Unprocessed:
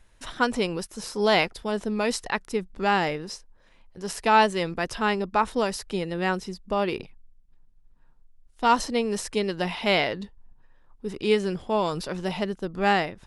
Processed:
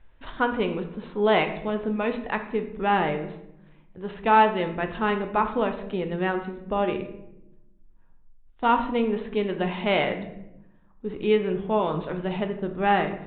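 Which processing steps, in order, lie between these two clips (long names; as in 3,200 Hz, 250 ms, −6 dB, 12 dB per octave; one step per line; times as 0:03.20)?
high-shelf EQ 3,100 Hz −8.5 dB
on a send at −6 dB: convolution reverb RT60 0.85 s, pre-delay 14 ms
on the sum: downsampling to 8,000 Hz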